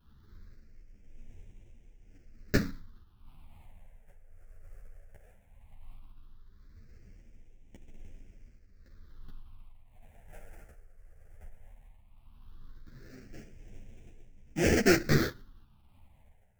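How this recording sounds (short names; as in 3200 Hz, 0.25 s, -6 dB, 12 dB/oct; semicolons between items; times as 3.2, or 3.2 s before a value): aliases and images of a low sample rate 1100 Hz, jitter 20%; phasing stages 6, 0.16 Hz, lowest notch 260–1200 Hz; tremolo triangle 0.89 Hz, depth 65%; a shimmering, thickened sound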